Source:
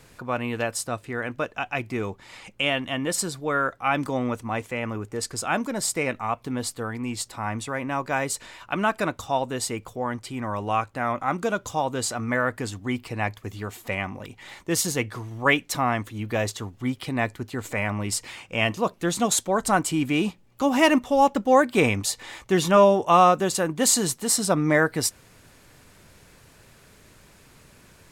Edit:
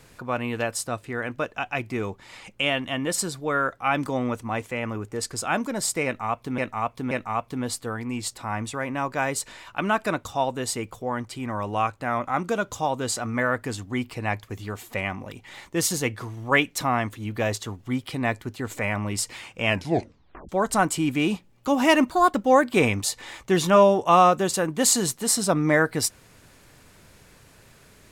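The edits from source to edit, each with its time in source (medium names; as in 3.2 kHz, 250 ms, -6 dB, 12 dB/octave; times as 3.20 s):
6.05–6.58 s: loop, 3 plays
18.62 s: tape stop 0.81 s
21.04–21.35 s: speed 129%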